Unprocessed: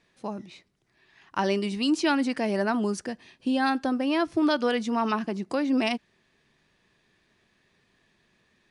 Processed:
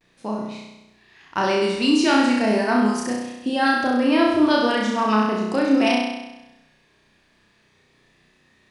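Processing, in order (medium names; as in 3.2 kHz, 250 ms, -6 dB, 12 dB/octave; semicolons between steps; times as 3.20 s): vibrato 0.39 Hz 35 cents; flutter echo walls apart 5.6 m, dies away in 1 s; trim +3 dB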